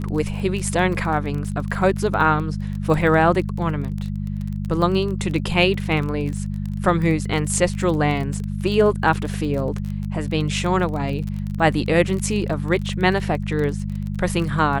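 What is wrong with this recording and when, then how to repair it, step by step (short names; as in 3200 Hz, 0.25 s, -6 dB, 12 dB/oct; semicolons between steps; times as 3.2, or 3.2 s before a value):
crackle 25/s -26 dBFS
hum 50 Hz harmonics 4 -26 dBFS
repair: de-click; de-hum 50 Hz, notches 4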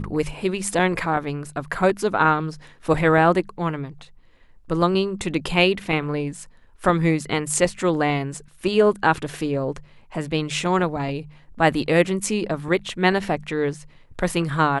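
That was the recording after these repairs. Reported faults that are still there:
none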